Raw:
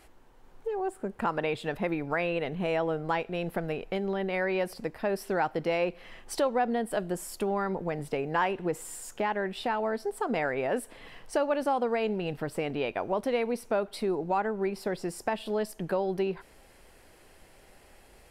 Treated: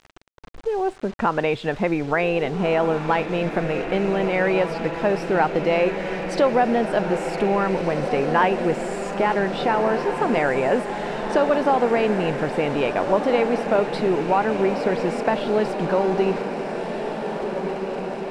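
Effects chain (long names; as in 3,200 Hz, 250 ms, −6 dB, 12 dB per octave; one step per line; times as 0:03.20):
bit reduction 8 bits
high-frequency loss of the air 110 metres
on a send: feedback delay with all-pass diffusion 1,724 ms, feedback 67%, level −7 dB
on the sum: level +8.5 dB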